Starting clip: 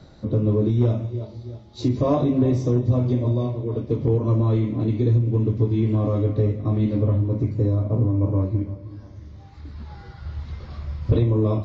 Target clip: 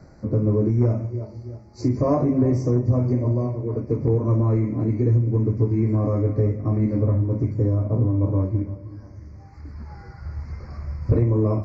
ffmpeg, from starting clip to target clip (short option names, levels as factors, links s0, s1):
-af "asuperstop=centerf=3300:order=8:qfactor=1.5"